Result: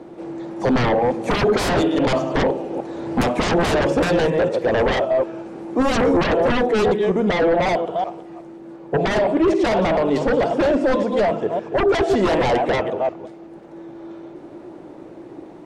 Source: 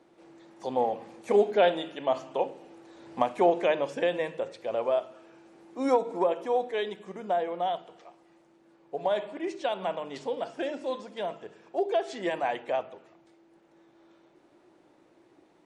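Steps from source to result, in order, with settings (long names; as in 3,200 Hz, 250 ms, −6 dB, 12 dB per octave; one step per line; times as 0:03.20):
delay that plays each chunk backwards 187 ms, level −10.5 dB
sine wavefolder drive 20 dB, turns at −10 dBFS
tilt shelving filter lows +7 dB, about 1,100 Hz
level −7 dB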